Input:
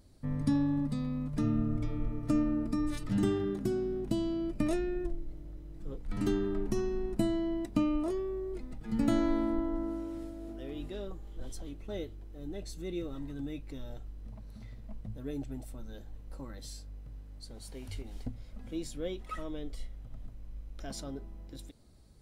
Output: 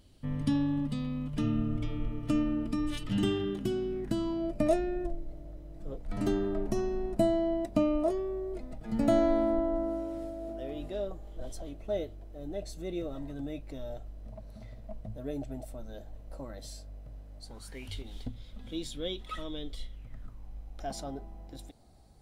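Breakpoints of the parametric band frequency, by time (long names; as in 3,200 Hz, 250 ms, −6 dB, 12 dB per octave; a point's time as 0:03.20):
parametric band +14 dB 0.42 octaves
0:03.88 3,000 Hz
0:04.46 640 Hz
0:17.42 640 Hz
0:17.93 3,500 Hz
0:19.90 3,500 Hz
0:20.49 750 Hz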